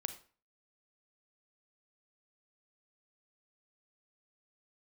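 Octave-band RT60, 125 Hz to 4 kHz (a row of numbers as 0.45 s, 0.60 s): 0.45 s, 0.40 s, 0.40 s, 0.40 s, 0.40 s, 0.35 s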